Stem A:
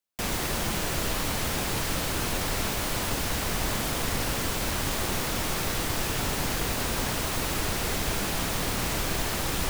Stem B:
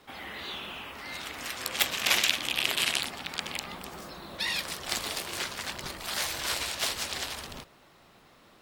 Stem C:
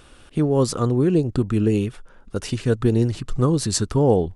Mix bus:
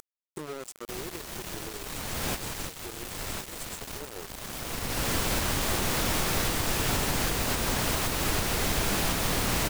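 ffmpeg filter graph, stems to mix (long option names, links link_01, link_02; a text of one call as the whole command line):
ffmpeg -i stem1.wav -i stem2.wav -i stem3.wav -filter_complex "[0:a]alimiter=limit=-18.5dB:level=0:latency=1:release=224,adelay=700,volume=2.5dB[link_01];[1:a]highpass=frequency=300:width=0.5412,highpass=frequency=300:width=1.3066,adelay=500,volume=-10.5dB[link_02];[2:a]bass=frequency=250:gain=-14,treble=frequency=4000:gain=-1,volume=-16dB,asplit=2[link_03][link_04];[link_04]apad=whole_len=458411[link_05];[link_01][link_05]sidechaincompress=threshold=-50dB:ratio=6:attack=16:release=719[link_06];[link_02][link_03]amix=inputs=2:normalize=0,firequalizer=gain_entry='entry(150,0);entry(240,-10);entry(360,7);entry(560,1);entry(810,-4);entry(1600,-8);entry(3000,-10);entry(7500,14);entry(12000,2)':delay=0.05:min_phase=1,alimiter=level_in=8.5dB:limit=-24dB:level=0:latency=1:release=296,volume=-8.5dB,volume=0dB[link_07];[link_06][link_07]amix=inputs=2:normalize=0,acompressor=mode=upward:threshold=-31dB:ratio=2.5,aeval=exprs='val(0)*gte(abs(val(0)),0.0188)':channel_layout=same" out.wav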